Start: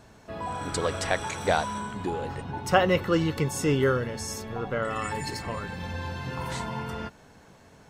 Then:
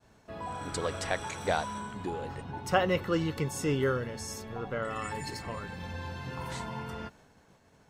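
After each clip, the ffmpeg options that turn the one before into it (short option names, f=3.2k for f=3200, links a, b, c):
-af "agate=range=-33dB:threshold=-49dB:ratio=3:detection=peak,volume=-5dB"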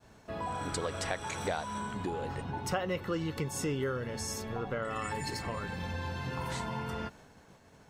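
-af "acompressor=threshold=-36dB:ratio=3,volume=3.5dB"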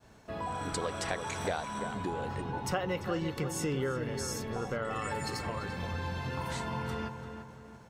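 -filter_complex "[0:a]asplit=2[a][b];[b]adelay=342,lowpass=f=2.2k:p=1,volume=-7.5dB,asplit=2[c][d];[d]adelay=342,lowpass=f=2.2k:p=1,volume=0.46,asplit=2[e][f];[f]adelay=342,lowpass=f=2.2k:p=1,volume=0.46,asplit=2[g][h];[h]adelay=342,lowpass=f=2.2k:p=1,volume=0.46,asplit=2[i][j];[j]adelay=342,lowpass=f=2.2k:p=1,volume=0.46[k];[a][c][e][g][i][k]amix=inputs=6:normalize=0"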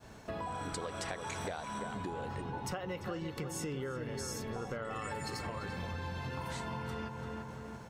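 -af "acompressor=threshold=-43dB:ratio=4,volume=5dB"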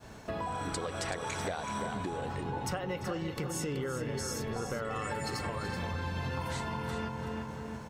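-af "aecho=1:1:378:0.335,volume=3.5dB"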